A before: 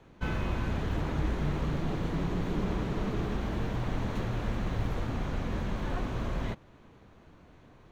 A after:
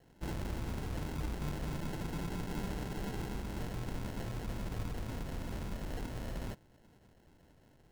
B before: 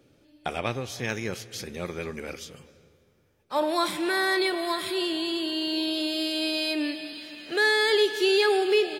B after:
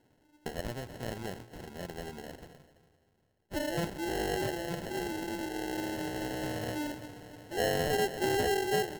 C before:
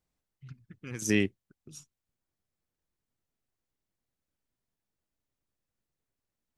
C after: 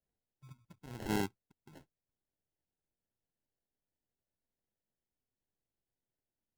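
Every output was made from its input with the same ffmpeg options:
-af "acrusher=samples=37:mix=1:aa=0.000001,volume=-7.5dB"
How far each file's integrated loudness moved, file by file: −7.5, −8.5, −8.0 LU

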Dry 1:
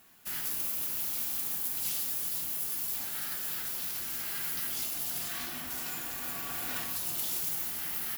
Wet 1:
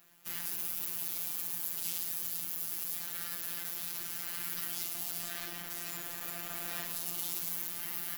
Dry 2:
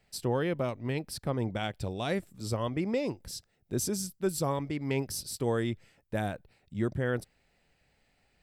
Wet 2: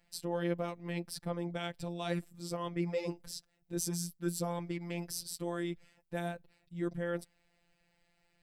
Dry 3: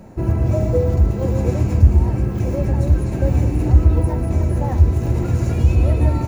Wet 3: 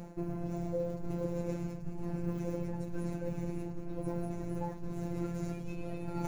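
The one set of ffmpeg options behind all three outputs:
-af "areverse,acompressor=threshold=-26dB:ratio=10,areverse,afftfilt=real='hypot(re,im)*cos(PI*b)':imag='0':win_size=1024:overlap=0.75"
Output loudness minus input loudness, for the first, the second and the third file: −3.5, −5.0, −20.5 LU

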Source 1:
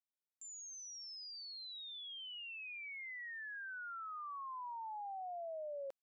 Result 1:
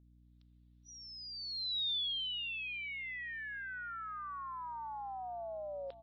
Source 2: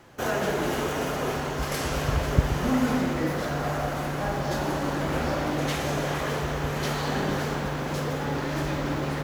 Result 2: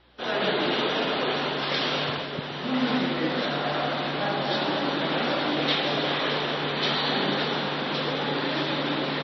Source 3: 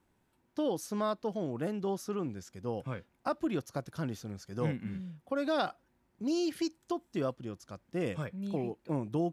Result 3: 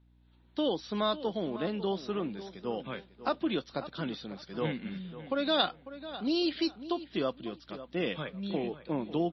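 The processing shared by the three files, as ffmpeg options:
-filter_complex "[0:a]lowpass=frequency=3700:width_type=q:width=4.2,asplit=2[link_01][link_02];[link_02]adelay=548,lowpass=frequency=2900:poles=1,volume=-13.5dB,asplit=2[link_03][link_04];[link_04]adelay=548,lowpass=frequency=2900:poles=1,volume=0.26,asplit=2[link_05][link_06];[link_06]adelay=548,lowpass=frequency=2900:poles=1,volume=0.26[link_07];[link_01][link_03][link_05][link_07]amix=inputs=4:normalize=0,dynaudnorm=framelen=190:gausssize=3:maxgain=10.5dB,highpass=frequency=170:width=0.5412,highpass=frequency=170:width=1.3066,aeval=exprs='val(0)+0.00224*(sin(2*PI*60*n/s)+sin(2*PI*2*60*n/s)/2+sin(2*PI*3*60*n/s)/3+sin(2*PI*4*60*n/s)/4+sin(2*PI*5*60*n/s)/5)':channel_layout=same,volume=-8.5dB" -ar 22050 -c:a libmp3lame -b:a 24k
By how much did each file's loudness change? +7.0, +2.0, +2.0 LU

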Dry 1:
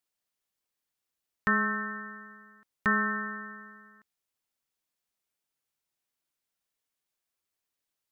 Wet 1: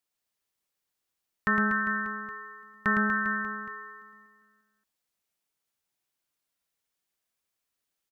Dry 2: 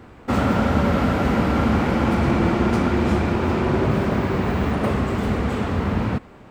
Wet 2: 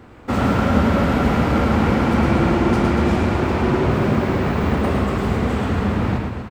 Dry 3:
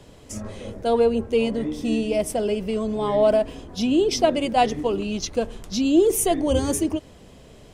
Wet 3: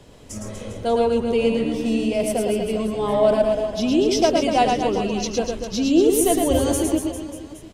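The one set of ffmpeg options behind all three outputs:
-af "aecho=1:1:110|242|400.4|590.5|818.6:0.631|0.398|0.251|0.158|0.1"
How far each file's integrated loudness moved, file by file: +1.5, +2.0, +2.0 LU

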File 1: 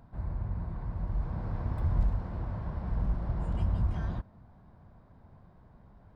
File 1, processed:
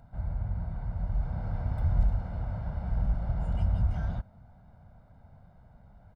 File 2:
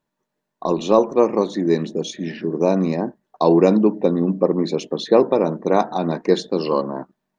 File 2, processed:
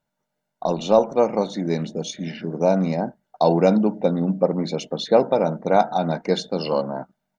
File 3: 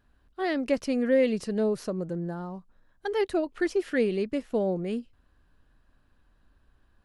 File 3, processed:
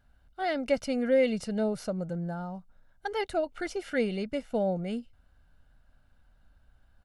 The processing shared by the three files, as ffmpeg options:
-af "aecho=1:1:1.4:0.59,volume=-1.5dB"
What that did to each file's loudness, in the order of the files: +2.0, −2.5, −2.5 LU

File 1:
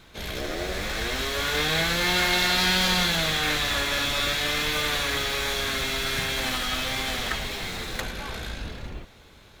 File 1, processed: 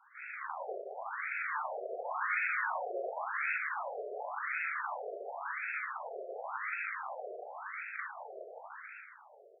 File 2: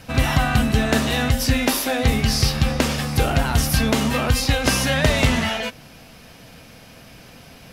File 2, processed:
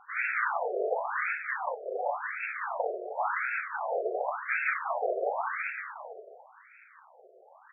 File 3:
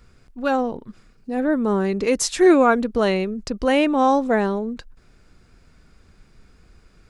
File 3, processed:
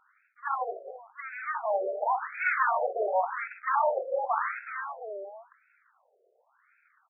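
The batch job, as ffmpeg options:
-af "aecho=1:1:43|59|355|727:0.299|0.335|0.168|0.299,aeval=exprs='abs(val(0))':channel_layout=same,afftfilt=real='re*between(b*sr/1024,500*pow(1900/500,0.5+0.5*sin(2*PI*0.92*pts/sr))/1.41,500*pow(1900/500,0.5+0.5*sin(2*PI*0.92*pts/sr))*1.41)':imag='im*between(b*sr/1024,500*pow(1900/500,0.5+0.5*sin(2*PI*0.92*pts/sr))/1.41,500*pow(1900/500,0.5+0.5*sin(2*PI*0.92*pts/sr))*1.41)':win_size=1024:overlap=0.75"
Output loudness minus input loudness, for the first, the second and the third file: −13.0, −12.0, −10.0 LU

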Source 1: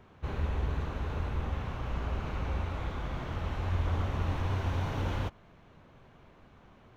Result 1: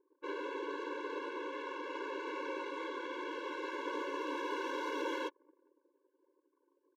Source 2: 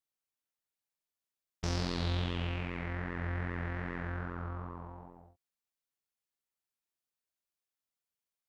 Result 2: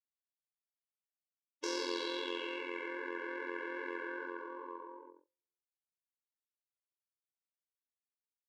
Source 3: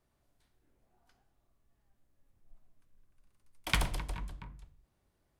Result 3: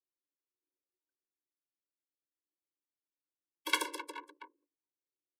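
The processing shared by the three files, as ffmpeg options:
-filter_complex "[0:a]asplit=2[link_01][link_02];[link_02]adelay=419.8,volume=-25dB,highshelf=frequency=4000:gain=-9.45[link_03];[link_01][link_03]amix=inputs=2:normalize=0,anlmdn=0.00631,afftfilt=real='re*eq(mod(floor(b*sr/1024/290),2),1)':imag='im*eq(mod(floor(b*sr/1024/290),2),1)':win_size=1024:overlap=0.75,volume=4dB"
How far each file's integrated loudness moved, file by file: −5.5, −3.0, 0.0 LU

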